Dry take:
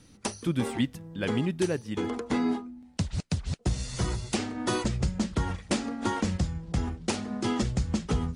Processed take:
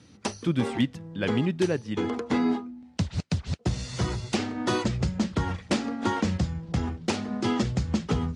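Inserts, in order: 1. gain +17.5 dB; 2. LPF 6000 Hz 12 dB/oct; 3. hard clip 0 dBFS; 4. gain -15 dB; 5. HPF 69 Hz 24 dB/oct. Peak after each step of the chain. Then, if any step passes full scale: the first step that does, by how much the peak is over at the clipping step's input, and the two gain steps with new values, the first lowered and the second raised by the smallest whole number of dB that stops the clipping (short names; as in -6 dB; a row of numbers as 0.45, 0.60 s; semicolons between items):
+3.5, +3.0, 0.0, -15.0, -12.5 dBFS; step 1, 3.0 dB; step 1 +14.5 dB, step 4 -12 dB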